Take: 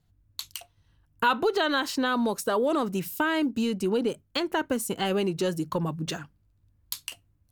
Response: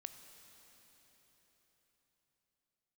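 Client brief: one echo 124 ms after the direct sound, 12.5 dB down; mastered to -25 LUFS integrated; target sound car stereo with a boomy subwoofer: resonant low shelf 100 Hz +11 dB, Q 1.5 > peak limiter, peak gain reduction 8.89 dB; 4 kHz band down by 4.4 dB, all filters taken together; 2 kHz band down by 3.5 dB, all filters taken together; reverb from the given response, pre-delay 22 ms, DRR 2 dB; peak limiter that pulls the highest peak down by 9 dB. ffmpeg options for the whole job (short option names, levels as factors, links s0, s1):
-filter_complex "[0:a]equalizer=f=2000:t=o:g=-4.5,equalizer=f=4000:t=o:g=-4,alimiter=limit=0.0891:level=0:latency=1,aecho=1:1:124:0.237,asplit=2[s0][s1];[1:a]atrim=start_sample=2205,adelay=22[s2];[s1][s2]afir=irnorm=-1:irlink=0,volume=1.33[s3];[s0][s3]amix=inputs=2:normalize=0,lowshelf=f=100:t=q:w=1.5:g=11,volume=2.66,alimiter=limit=0.15:level=0:latency=1"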